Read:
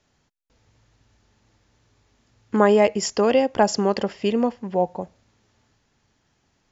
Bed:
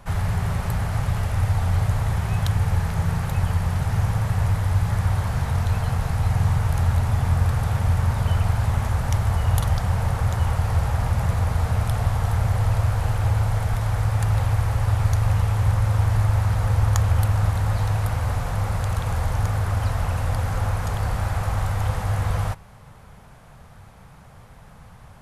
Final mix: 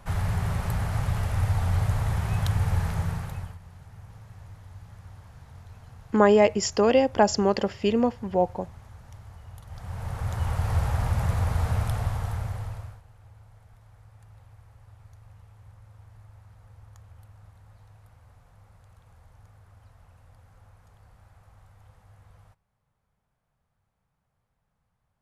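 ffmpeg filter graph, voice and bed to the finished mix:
-filter_complex "[0:a]adelay=3600,volume=-1.5dB[a];[1:a]volume=17.5dB,afade=t=out:st=2.89:d=0.69:silence=0.0891251,afade=t=in:st=9.66:d=1.09:silence=0.0891251,afade=t=out:st=11.72:d=1.3:silence=0.0421697[b];[a][b]amix=inputs=2:normalize=0"

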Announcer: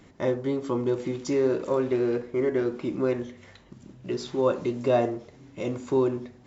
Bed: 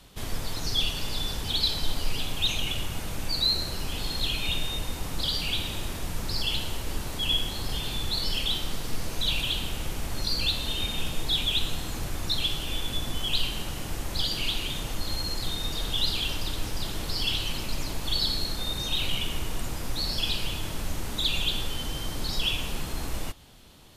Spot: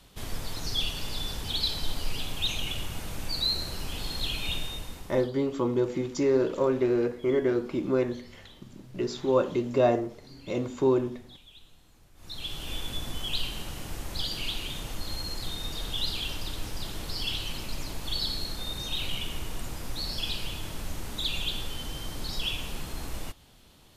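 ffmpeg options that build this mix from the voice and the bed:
-filter_complex "[0:a]adelay=4900,volume=0dB[a];[1:a]volume=19.5dB,afade=t=out:st=4.54:d=0.76:silence=0.0668344,afade=t=in:st=12.15:d=0.56:silence=0.0749894[b];[a][b]amix=inputs=2:normalize=0"

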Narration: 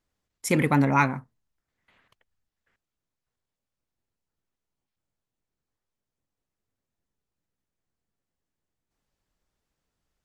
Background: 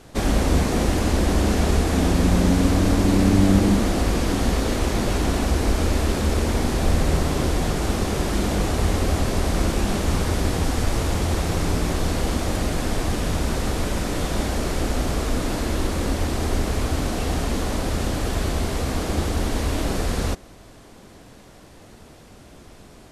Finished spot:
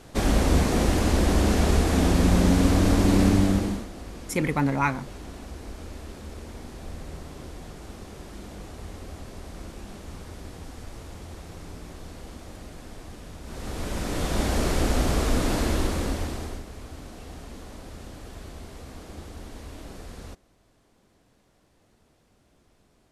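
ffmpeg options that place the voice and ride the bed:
-filter_complex "[0:a]adelay=3850,volume=-3dB[a];[1:a]volume=17dB,afade=t=out:st=3.23:d=0.64:silence=0.141254,afade=t=in:st=13.43:d=1.17:silence=0.11885,afade=t=out:st=15.62:d=1.02:silence=0.133352[b];[a][b]amix=inputs=2:normalize=0"

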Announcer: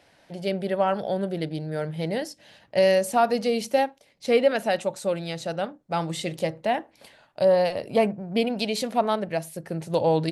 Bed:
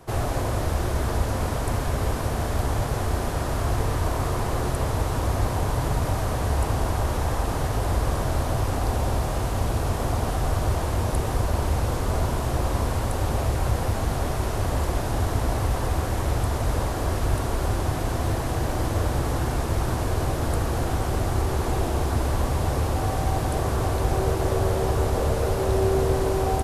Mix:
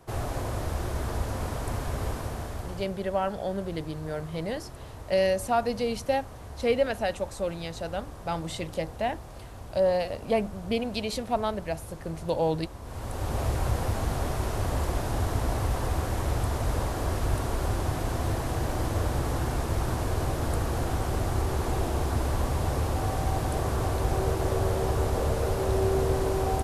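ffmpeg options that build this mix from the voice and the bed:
-filter_complex "[0:a]adelay=2350,volume=-4.5dB[a];[1:a]volume=8.5dB,afade=t=out:st=2.07:d=0.88:silence=0.251189,afade=t=in:st=12.82:d=0.64:silence=0.188365[b];[a][b]amix=inputs=2:normalize=0"

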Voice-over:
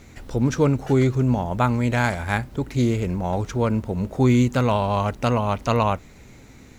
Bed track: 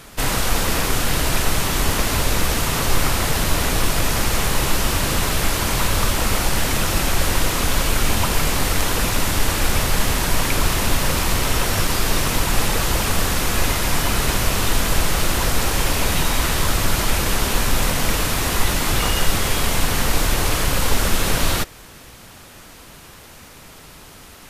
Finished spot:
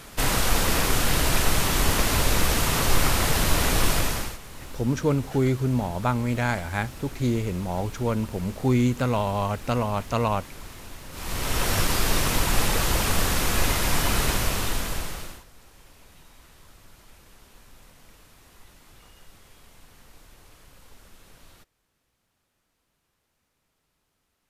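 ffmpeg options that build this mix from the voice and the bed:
-filter_complex "[0:a]adelay=4450,volume=-4dB[a];[1:a]volume=17dB,afade=t=out:st=3.92:d=0.46:silence=0.0944061,afade=t=in:st=11.11:d=0.6:silence=0.105925,afade=t=out:st=14.2:d=1.24:silence=0.0334965[b];[a][b]amix=inputs=2:normalize=0"

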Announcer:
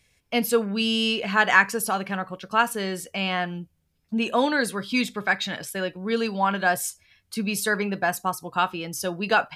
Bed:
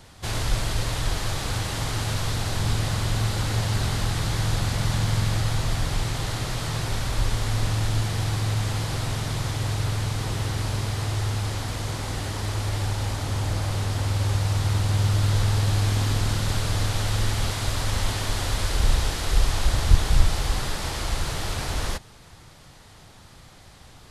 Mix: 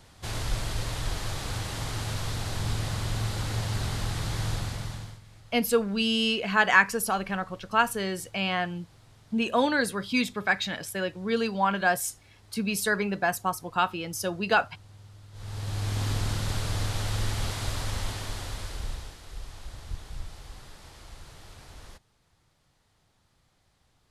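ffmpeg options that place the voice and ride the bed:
-filter_complex "[0:a]adelay=5200,volume=-2dB[a];[1:a]volume=18dB,afade=t=out:st=4.49:d=0.71:silence=0.0707946,afade=t=in:st=15.32:d=0.76:silence=0.0668344,afade=t=out:st=17.66:d=1.53:silence=0.177828[b];[a][b]amix=inputs=2:normalize=0"

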